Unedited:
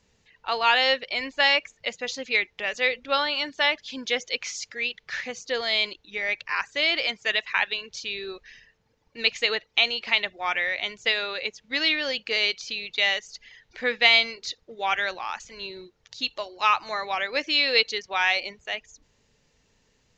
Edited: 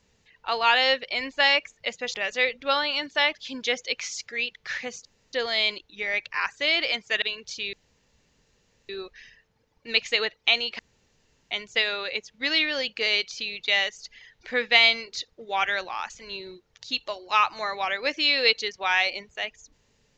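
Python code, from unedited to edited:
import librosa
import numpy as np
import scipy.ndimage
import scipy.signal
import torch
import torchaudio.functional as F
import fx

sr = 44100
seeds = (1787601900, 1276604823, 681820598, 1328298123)

y = fx.edit(x, sr, fx.cut(start_s=2.14, length_s=0.43),
    fx.insert_room_tone(at_s=5.48, length_s=0.28),
    fx.cut(start_s=7.37, length_s=0.31),
    fx.insert_room_tone(at_s=8.19, length_s=1.16),
    fx.room_tone_fill(start_s=10.09, length_s=0.72), tone=tone)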